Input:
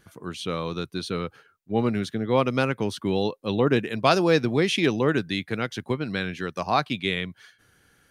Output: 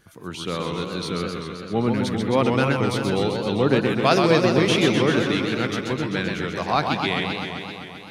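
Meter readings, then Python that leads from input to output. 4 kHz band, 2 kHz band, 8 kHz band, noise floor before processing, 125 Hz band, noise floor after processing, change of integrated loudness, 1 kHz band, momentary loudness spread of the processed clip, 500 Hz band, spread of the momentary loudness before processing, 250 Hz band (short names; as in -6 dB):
+4.0 dB, +3.5 dB, +5.0 dB, -63 dBFS, +4.0 dB, -39 dBFS, +3.0 dB, +3.0 dB, 12 LU, +3.0 dB, 10 LU, +3.5 dB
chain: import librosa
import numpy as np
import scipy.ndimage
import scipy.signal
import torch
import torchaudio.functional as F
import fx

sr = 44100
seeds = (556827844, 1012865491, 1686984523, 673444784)

y = fx.transient(x, sr, attack_db=-1, sustain_db=3)
y = fx.echo_warbled(y, sr, ms=130, feedback_pct=76, rate_hz=2.8, cents=185, wet_db=-5.0)
y = y * 10.0 ** (1.0 / 20.0)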